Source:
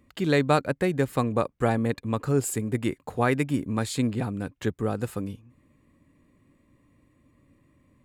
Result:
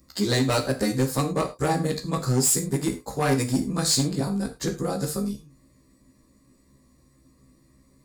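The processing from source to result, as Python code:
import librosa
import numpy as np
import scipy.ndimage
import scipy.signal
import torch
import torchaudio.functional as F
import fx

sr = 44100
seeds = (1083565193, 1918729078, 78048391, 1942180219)

y = fx.frame_reverse(x, sr, frame_ms=30.0)
y = fx.high_shelf_res(y, sr, hz=3700.0, db=9.0, q=3.0)
y = np.clip(y, -10.0 ** (-22.5 / 20.0), 10.0 ** (-22.5 / 20.0))
y = fx.rev_gated(y, sr, seeds[0], gate_ms=130, shape='falling', drr_db=4.5)
y = F.gain(torch.from_numpy(y), 4.5).numpy()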